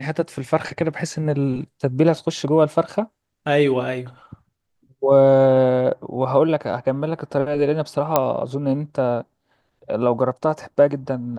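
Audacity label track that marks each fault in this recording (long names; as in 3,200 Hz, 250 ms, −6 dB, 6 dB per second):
8.160000	8.160000	click −2 dBFS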